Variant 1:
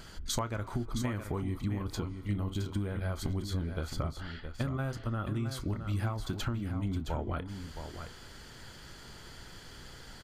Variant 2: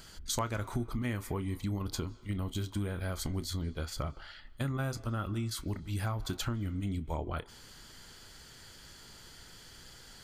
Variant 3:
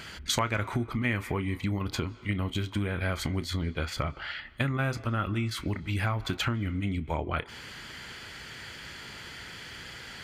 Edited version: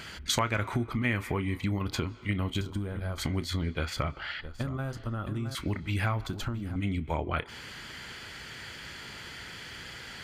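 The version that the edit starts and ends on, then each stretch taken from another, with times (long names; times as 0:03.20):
3
0:02.61–0:03.18: punch in from 1
0:04.41–0:05.55: punch in from 1
0:06.27–0:06.76: punch in from 1
not used: 2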